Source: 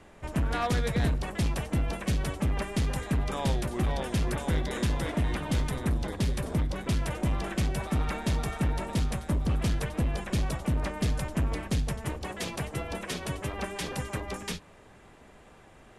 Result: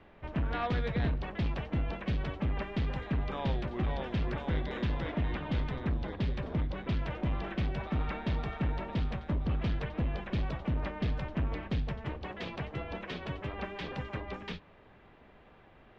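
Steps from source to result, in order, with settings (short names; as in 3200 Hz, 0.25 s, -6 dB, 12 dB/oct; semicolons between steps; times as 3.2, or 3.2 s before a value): LPF 3700 Hz 24 dB/oct; gain -4 dB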